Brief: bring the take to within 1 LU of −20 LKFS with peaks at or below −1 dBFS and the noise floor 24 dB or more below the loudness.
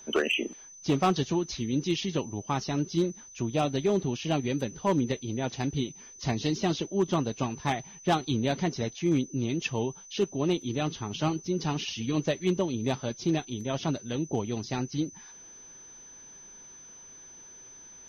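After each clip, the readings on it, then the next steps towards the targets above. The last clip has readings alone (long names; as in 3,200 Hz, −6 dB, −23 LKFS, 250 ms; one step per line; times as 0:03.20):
share of clipped samples 0.3%; peaks flattened at −18.0 dBFS; interfering tone 6,100 Hz; level of the tone −47 dBFS; integrated loudness −30.0 LKFS; sample peak −18.0 dBFS; target loudness −20.0 LKFS
→ clipped peaks rebuilt −18 dBFS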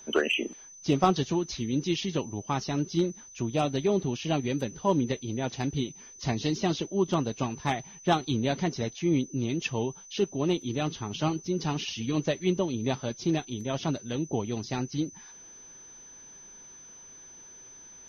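share of clipped samples 0.0%; interfering tone 6,100 Hz; level of the tone −47 dBFS
→ notch filter 6,100 Hz, Q 30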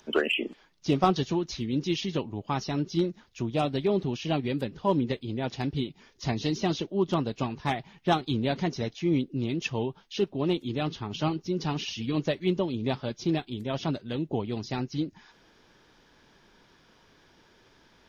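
interfering tone none found; integrated loudness −30.0 LKFS; sample peak −9.5 dBFS; target loudness −20.0 LKFS
→ level +10 dB
brickwall limiter −1 dBFS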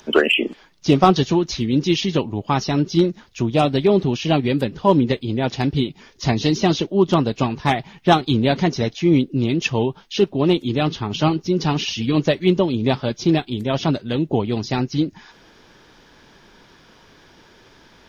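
integrated loudness −20.0 LKFS; sample peak −1.0 dBFS; background noise floor −51 dBFS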